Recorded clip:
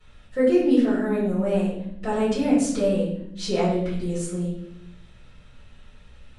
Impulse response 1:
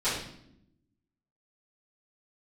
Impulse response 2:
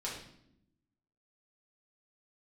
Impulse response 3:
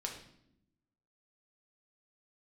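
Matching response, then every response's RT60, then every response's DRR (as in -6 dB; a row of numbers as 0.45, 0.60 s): 1; 0.75, 0.75, 0.75 s; -15.5, -6.0, 0.0 dB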